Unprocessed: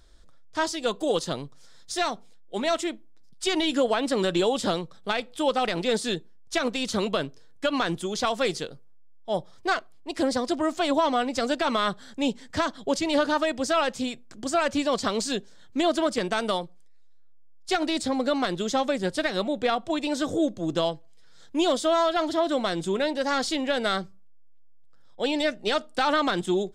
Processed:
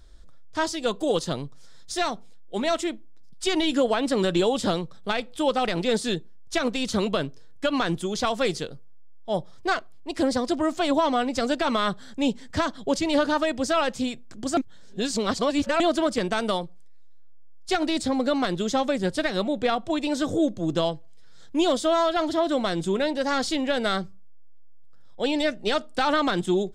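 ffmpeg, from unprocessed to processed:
-filter_complex "[0:a]asplit=3[a][b][c];[a]atrim=end=14.572[d];[b]atrim=start=14.568:end=15.802,asetpts=PTS-STARTPTS,areverse[e];[c]atrim=start=15.798[f];[d][e]acrossfade=d=0.004:c1=hsin:c2=hsin[g];[g][f]acrossfade=d=0.004:c1=hsin:c2=hsin,lowshelf=f=200:g=6.5"

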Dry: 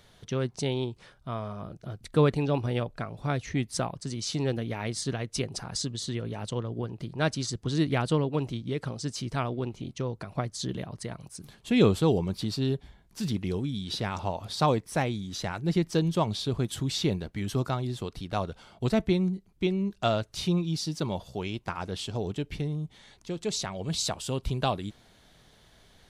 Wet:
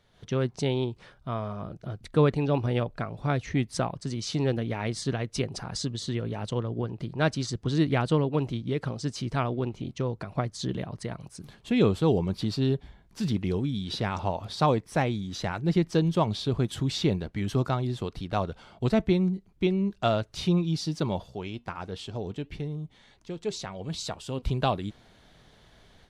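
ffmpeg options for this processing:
-filter_complex "[0:a]asettb=1/sr,asplit=3[a][b][c];[a]atrim=end=21.264[d];[b]atrim=start=21.26:end=24.42,asetpts=PTS-STARTPTS,afade=t=in:d=0.004:c=qsin,afade=t=out:st=3.156:d=0.004:c=qsin,flanger=delay=2.1:depth=2.1:regen=87:speed=1.4:shape=sinusoidal[e];[c]atrim=start=24.416[f];[d][e]acrossfade=d=0.004:c1=hsin:c2=qsin[g];[g][f]acrossfade=d=0.004:c1=qsin:c2=hsin,lowpass=f=3.9k:p=1,dynaudnorm=f=120:g=3:m=10.5dB,volume=-8dB"

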